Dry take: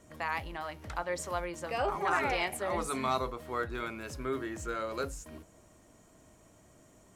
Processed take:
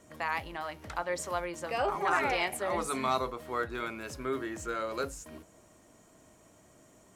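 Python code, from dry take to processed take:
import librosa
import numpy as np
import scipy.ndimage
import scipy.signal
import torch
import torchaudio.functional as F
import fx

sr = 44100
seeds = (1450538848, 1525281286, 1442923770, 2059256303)

y = fx.low_shelf(x, sr, hz=100.0, db=-8.5)
y = y * 10.0 ** (1.5 / 20.0)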